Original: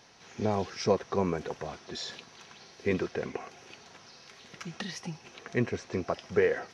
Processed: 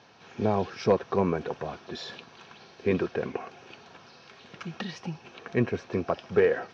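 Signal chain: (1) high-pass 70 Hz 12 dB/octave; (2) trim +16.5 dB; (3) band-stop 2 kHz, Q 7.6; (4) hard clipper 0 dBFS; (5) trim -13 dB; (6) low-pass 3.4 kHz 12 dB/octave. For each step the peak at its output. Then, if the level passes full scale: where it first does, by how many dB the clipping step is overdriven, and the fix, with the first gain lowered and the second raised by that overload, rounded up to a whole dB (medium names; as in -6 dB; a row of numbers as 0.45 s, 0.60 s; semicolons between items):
-11.5 dBFS, +5.0 dBFS, +5.0 dBFS, 0.0 dBFS, -13.0 dBFS, -12.5 dBFS; step 2, 5.0 dB; step 2 +11.5 dB, step 5 -8 dB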